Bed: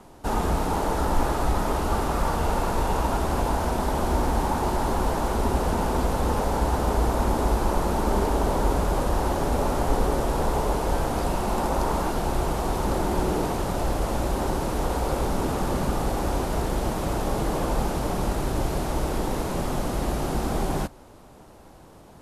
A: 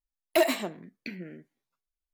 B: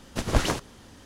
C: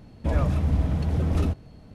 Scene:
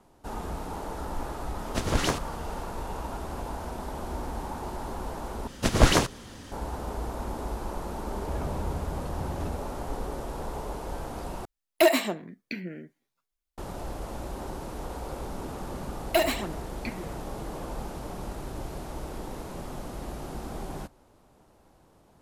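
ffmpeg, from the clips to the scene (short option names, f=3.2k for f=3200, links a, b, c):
-filter_complex "[2:a]asplit=2[a][b];[1:a]asplit=2[c][d];[0:a]volume=-11dB[e];[a]alimiter=level_in=10.5dB:limit=-1dB:release=50:level=0:latency=1[f];[b]acontrast=40[g];[c]acontrast=63[h];[d]aphaser=in_gain=1:out_gain=1:delay=4.6:decay=0.53:speed=1.4:type=triangular[i];[e]asplit=3[j][k][l];[j]atrim=end=5.474[m];[g]atrim=end=1.05,asetpts=PTS-STARTPTS,volume=-0.5dB[n];[k]atrim=start=6.516:end=11.454[o];[h]atrim=end=2.13,asetpts=PTS-STARTPTS,volume=-3dB[p];[l]atrim=start=13.576[q];[f]atrim=end=1.05,asetpts=PTS-STARTPTS,volume=-10.5dB,afade=t=in:d=0.004:c=hsin,afade=t=out:st=1.046:d=0.004:c=hsin,adelay=1590[r];[3:a]atrim=end=1.94,asetpts=PTS-STARTPTS,volume=-11.5dB,afade=t=in:d=0.004:c=hsin,afade=t=out:st=1.936:d=0.004:c=hsin,adelay=8030[s];[i]atrim=end=2.13,asetpts=PTS-STARTPTS,volume=-0.5dB,afade=t=in:d=0.004:c=hsin,afade=t=out:st=2.126:d=0.004:c=hsin,adelay=15790[t];[m][n]acrossfade=d=0.004:c1=hsin:c2=hsin[u];[u][o]acrossfade=d=0.004:c1=hsin:c2=hsin[v];[v][p]acrossfade=d=0.004:c1=hsin:c2=hsin[w];[w][q]acrossfade=d=0.004:c1=hsin:c2=hsin[x];[x][r][s][t]amix=inputs=4:normalize=0"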